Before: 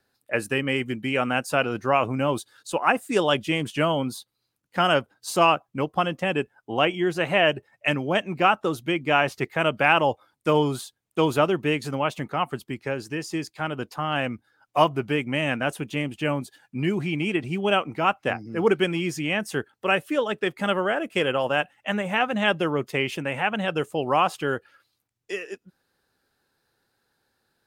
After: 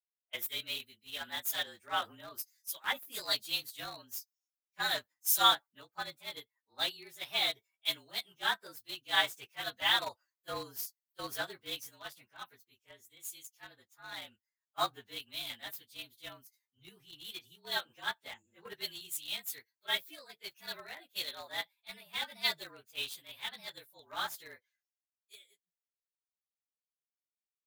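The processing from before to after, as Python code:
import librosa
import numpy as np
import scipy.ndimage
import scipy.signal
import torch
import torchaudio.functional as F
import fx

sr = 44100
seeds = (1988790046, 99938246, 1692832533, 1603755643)

p1 = fx.partial_stretch(x, sr, pct=111)
p2 = F.preemphasis(torch.from_numpy(p1), 0.97).numpy()
p3 = fx.quant_dither(p2, sr, seeds[0], bits=6, dither='none')
p4 = p2 + (p3 * librosa.db_to_amplitude(-8.0))
p5 = fx.band_widen(p4, sr, depth_pct=100)
y = p5 * librosa.db_to_amplitude(-2.0)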